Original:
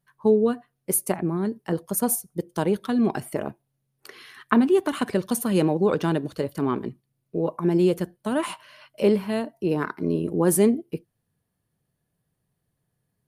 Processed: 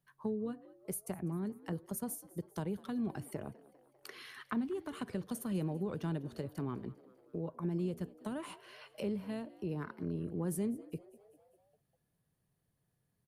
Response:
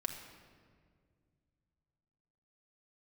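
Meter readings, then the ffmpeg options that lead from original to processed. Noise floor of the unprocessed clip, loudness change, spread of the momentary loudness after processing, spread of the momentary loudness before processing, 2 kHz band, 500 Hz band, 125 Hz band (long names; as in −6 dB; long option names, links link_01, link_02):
−78 dBFS, −15.5 dB, 12 LU, 11 LU, −16.0 dB, −18.5 dB, −10.0 dB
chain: -filter_complex "[0:a]acrossover=split=150[link_01][link_02];[link_02]acompressor=threshold=-39dB:ratio=3[link_03];[link_01][link_03]amix=inputs=2:normalize=0,asplit=2[link_04][link_05];[link_05]asplit=5[link_06][link_07][link_08][link_09][link_10];[link_06]adelay=199,afreqshift=69,volume=-21dB[link_11];[link_07]adelay=398,afreqshift=138,volume=-25.7dB[link_12];[link_08]adelay=597,afreqshift=207,volume=-30.5dB[link_13];[link_09]adelay=796,afreqshift=276,volume=-35.2dB[link_14];[link_10]adelay=995,afreqshift=345,volume=-39.9dB[link_15];[link_11][link_12][link_13][link_14][link_15]amix=inputs=5:normalize=0[link_16];[link_04][link_16]amix=inputs=2:normalize=0,volume=-4.5dB"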